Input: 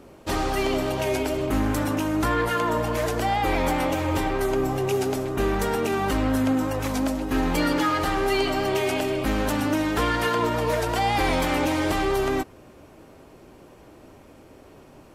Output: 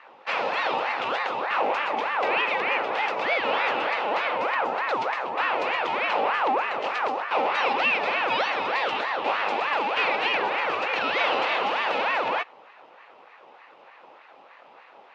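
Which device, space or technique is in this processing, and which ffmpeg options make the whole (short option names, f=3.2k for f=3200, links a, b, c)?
voice changer toy: -af "aeval=exprs='val(0)*sin(2*PI*1000*n/s+1000*0.5/3.3*sin(2*PI*3.3*n/s))':c=same,highpass=410,equalizer=f=520:t=q:w=4:g=6,equalizer=f=820:t=q:w=4:g=5,equalizer=f=1.6k:t=q:w=4:g=-4,equalizer=f=2.6k:t=q:w=4:g=9,lowpass=f=4.4k:w=0.5412,lowpass=f=4.4k:w=1.3066"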